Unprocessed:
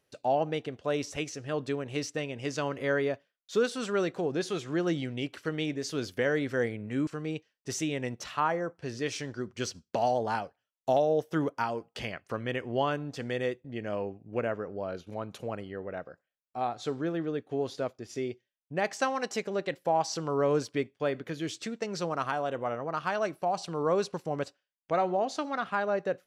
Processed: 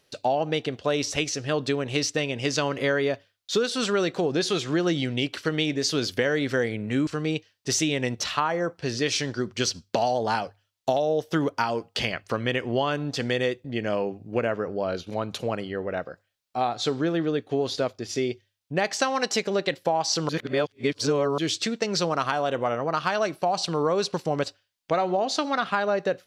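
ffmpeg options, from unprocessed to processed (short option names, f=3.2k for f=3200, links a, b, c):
-filter_complex "[0:a]asplit=3[a][b][c];[a]atrim=end=20.292[d];[b]atrim=start=20.288:end=21.382,asetpts=PTS-STARTPTS,areverse[e];[c]atrim=start=21.378[f];[d][e]acrossfade=d=0.004:c1=hsin:c2=hsin[g];[g][f]acrossfade=d=0.004:c1=hsin:c2=hsin,equalizer=f=4.2k:w=1.1:g=7.5,bandreject=f=50:t=h:w=6,bandreject=f=100:t=h:w=6,acompressor=threshold=-28dB:ratio=6,volume=8dB"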